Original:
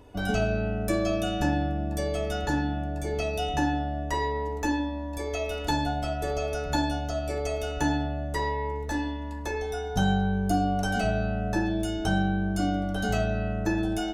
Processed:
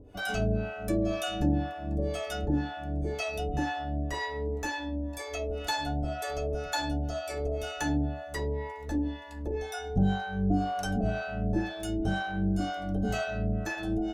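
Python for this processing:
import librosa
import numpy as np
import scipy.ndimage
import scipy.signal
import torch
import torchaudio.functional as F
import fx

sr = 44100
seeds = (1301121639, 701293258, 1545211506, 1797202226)

p1 = fx.notch(x, sr, hz=940.0, q=8.0)
p2 = np.clip(p1, -10.0 ** (-26.0 / 20.0), 10.0 ** (-26.0 / 20.0))
p3 = p1 + (p2 * 10.0 ** (-10.0 / 20.0))
y = fx.harmonic_tremolo(p3, sr, hz=2.0, depth_pct=100, crossover_hz=600.0)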